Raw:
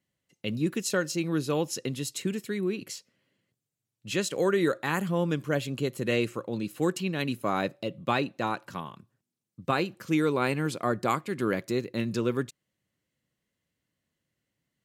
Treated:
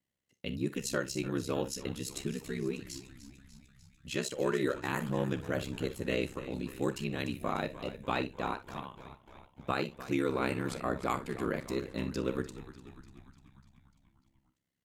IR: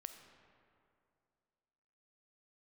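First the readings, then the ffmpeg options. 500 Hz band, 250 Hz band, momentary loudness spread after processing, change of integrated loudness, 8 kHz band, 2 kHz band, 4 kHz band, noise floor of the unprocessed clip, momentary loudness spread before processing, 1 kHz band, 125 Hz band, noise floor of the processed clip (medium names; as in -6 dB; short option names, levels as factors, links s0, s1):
-5.5 dB, -6.0 dB, 15 LU, -6.0 dB, -5.5 dB, -5.5 dB, -5.5 dB, under -85 dBFS, 9 LU, -5.5 dB, -5.5 dB, -77 dBFS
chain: -filter_complex "[0:a]asplit=8[s0][s1][s2][s3][s4][s5][s6][s7];[s1]adelay=297,afreqshift=-59,volume=0.188[s8];[s2]adelay=594,afreqshift=-118,volume=0.12[s9];[s3]adelay=891,afreqshift=-177,volume=0.0767[s10];[s4]adelay=1188,afreqshift=-236,volume=0.0495[s11];[s5]adelay=1485,afreqshift=-295,volume=0.0316[s12];[s6]adelay=1782,afreqshift=-354,volume=0.0202[s13];[s7]adelay=2079,afreqshift=-413,volume=0.0129[s14];[s0][s8][s9][s10][s11][s12][s13][s14]amix=inputs=8:normalize=0[s15];[1:a]atrim=start_sample=2205,atrim=end_sample=4410,asetrate=61740,aresample=44100[s16];[s15][s16]afir=irnorm=-1:irlink=0,aeval=exprs='val(0)*sin(2*PI*33*n/s)':c=same,volume=1.88"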